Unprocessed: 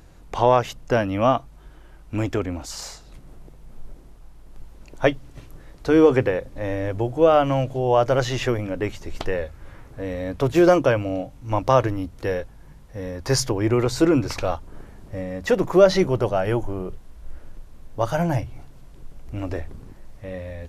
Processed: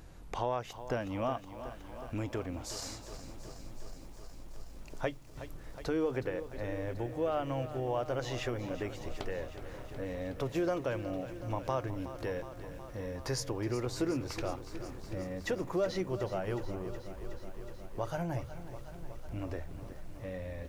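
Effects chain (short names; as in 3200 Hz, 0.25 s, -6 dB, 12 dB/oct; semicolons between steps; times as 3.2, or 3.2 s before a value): compressor 2:1, threshold -37 dBFS, peak gain reduction 15.5 dB; lo-fi delay 0.368 s, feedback 80%, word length 9-bit, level -12.5 dB; gain -3.5 dB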